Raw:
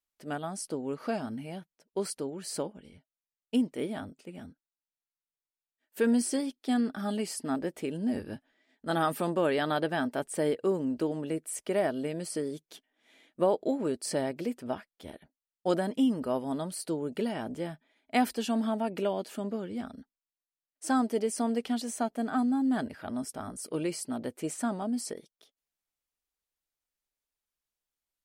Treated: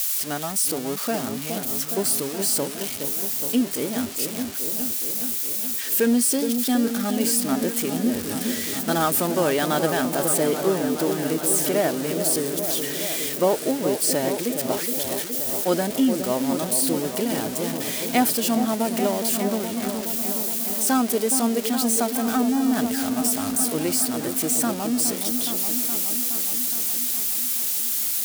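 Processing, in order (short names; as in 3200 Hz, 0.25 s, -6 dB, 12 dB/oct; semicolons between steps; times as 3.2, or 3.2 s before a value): switching spikes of -23.5 dBFS; repeats that get brighter 0.418 s, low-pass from 750 Hz, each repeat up 1 oct, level -6 dB; gain +5.5 dB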